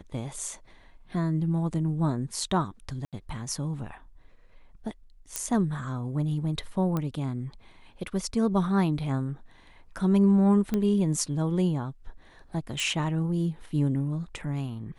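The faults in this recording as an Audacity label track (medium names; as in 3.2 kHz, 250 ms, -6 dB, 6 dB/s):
3.050000	3.130000	dropout 77 ms
5.360000	5.360000	pop -12 dBFS
6.970000	6.970000	pop -17 dBFS
10.740000	10.740000	pop -15 dBFS
12.800000	12.800000	pop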